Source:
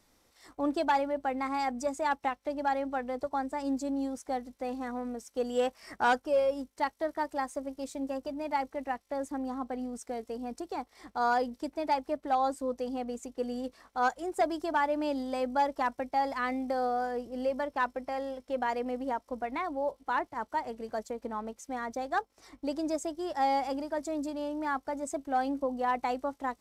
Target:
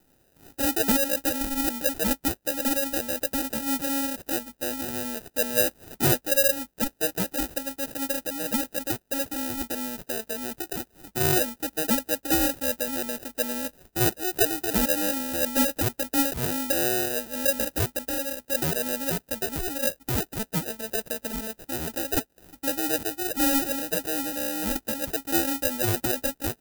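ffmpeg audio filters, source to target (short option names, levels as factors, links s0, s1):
-af "acrusher=samples=40:mix=1:aa=0.000001,aemphasis=mode=production:type=50fm,volume=1.33"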